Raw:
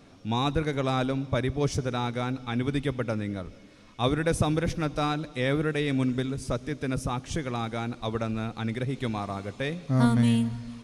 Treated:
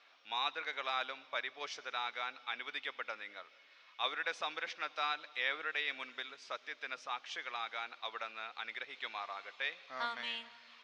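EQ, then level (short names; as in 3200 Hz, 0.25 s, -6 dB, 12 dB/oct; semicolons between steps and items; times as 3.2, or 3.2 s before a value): BPF 720–3300 Hz; air absorption 190 m; differentiator; +12.0 dB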